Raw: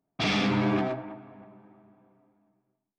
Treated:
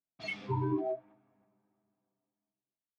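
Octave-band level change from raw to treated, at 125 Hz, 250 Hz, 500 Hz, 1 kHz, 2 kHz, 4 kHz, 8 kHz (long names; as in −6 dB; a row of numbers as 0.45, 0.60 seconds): −4.5 dB, −10.5 dB, −5.0 dB, −8.0 dB, −11.0 dB, below −15 dB, can't be measured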